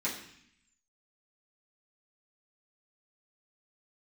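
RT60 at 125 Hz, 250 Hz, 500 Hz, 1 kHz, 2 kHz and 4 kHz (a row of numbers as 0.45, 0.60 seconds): 0.95, 0.95, 0.60, 0.70, 0.90, 0.85 seconds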